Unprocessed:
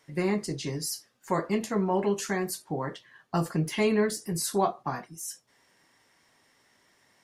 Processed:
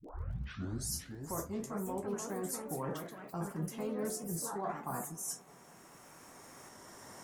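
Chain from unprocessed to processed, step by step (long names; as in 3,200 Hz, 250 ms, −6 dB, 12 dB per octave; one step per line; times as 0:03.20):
turntable start at the beginning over 0.94 s
camcorder AGC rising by 6.8 dB per second
flat-topped bell 2,900 Hz −11 dB
hum removal 144.8 Hz, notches 30
reversed playback
downward compressor 6 to 1, threshold −38 dBFS, peak gain reduction 16.5 dB
reversed playback
surface crackle 19 per second −53 dBFS
on a send: delay with a low-pass on its return 206 ms, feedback 78%, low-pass 1,500 Hz, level −20.5 dB
on the sum: delay with pitch and tempo change per echo 601 ms, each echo +3 semitones, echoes 3, each echo −6 dB
level +1 dB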